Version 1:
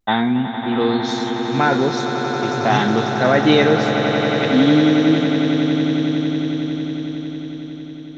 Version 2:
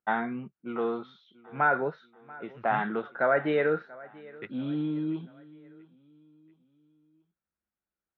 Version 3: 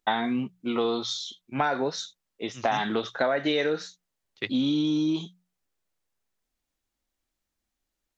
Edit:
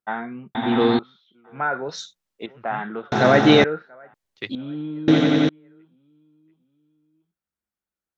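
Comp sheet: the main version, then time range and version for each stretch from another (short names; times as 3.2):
2
0.55–0.99 from 1
1.89–2.46 from 3
3.12–3.64 from 1
4.14–4.55 from 3
5.08–5.49 from 1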